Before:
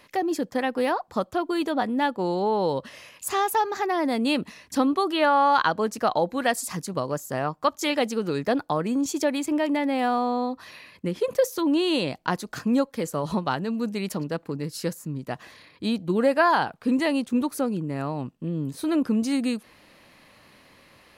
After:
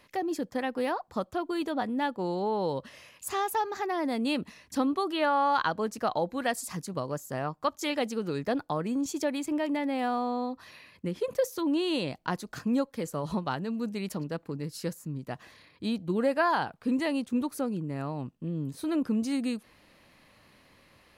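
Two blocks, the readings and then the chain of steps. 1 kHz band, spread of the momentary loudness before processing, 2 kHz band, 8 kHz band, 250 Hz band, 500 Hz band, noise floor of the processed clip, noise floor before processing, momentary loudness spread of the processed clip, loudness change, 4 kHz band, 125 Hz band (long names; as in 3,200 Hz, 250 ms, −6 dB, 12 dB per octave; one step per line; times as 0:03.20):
−6.0 dB, 9 LU, −6.0 dB, −6.0 dB, −5.0 dB, −5.5 dB, −61 dBFS, −56 dBFS, 8 LU, −5.5 dB, −6.0 dB, −4.0 dB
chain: low-shelf EQ 120 Hz +6 dB
level −6 dB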